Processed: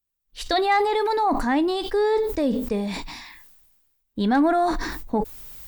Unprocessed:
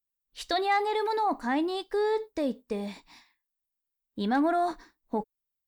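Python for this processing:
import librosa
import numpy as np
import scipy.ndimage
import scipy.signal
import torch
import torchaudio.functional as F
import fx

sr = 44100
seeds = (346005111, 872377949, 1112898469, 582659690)

y = fx.low_shelf(x, sr, hz=110.0, db=11.5)
y = fx.sustainer(y, sr, db_per_s=39.0)
y = F.gain(torch.from_numpy(y), 5.0).numpy()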